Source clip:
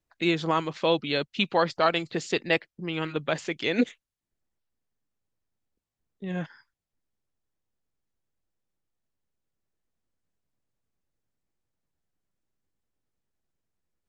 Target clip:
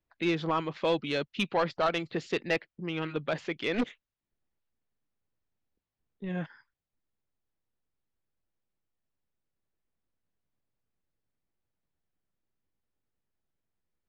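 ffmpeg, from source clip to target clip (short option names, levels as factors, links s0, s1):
-filter_complex "[0:a]lowpass=3700,asettb=1/sr,asplit=3[s0][s1][s2];[s0]atrim=end=3.744[s3];[s1]atrim=start=3.74:end=6.29,asetpts=PTS-STARTPTS,afade=t=in:d=0.004:c=qsin,afade=t=out:st=2.546:d=0.004:c=qsin,aeval=exprs='0.266*(cos(1*acos(clip(val(0)/0.266,-1,1)))-cos(1*PI/2))+0.0668*(cos(3*acos(clip(val(0)/0.266,-1,1)))-cos(3*PI/2))+0.0473*(cos(5*acos(clip(val(0)/0.266,-1,1)))-cos(5*PI/2))+0.0211*(cos(6*acos(clip(val(0)/0.266,-1,1)))-cos(6*PI/2))':c=same[s4];[s2]atrim=start=6.286[s5];[s3][s4]acrossfade=d=0.004:c1=hsin:c2=qsin[s6];[s6][s5]acrossfade=d=0.004:c1=qsin:c2=hsin,asoftclip=type=tanh:threshold=0.158,volume=0.794"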